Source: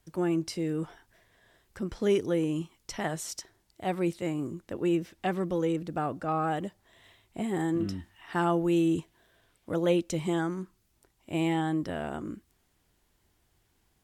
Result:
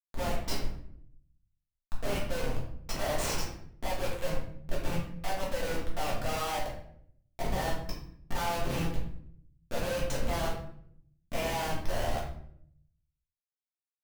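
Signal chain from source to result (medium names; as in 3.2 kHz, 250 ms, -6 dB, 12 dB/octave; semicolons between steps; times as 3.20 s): steep high-pass 510 Hz 72 dB/octave; treble shelf 2.3 kHz +2.5 dB; Schmitt trigger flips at -36 dBFS; reverberation RT60 0.65 s, pre-delay 4 ms, DRR -5.5 dB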